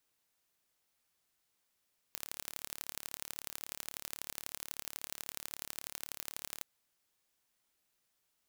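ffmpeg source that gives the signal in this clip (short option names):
-f lavfi -i "aevalsrc='0.266*eq(mod(n,1215),0)*(0.5+0.5*eq(mod(n,3645),0))':d=4.47:s=44100"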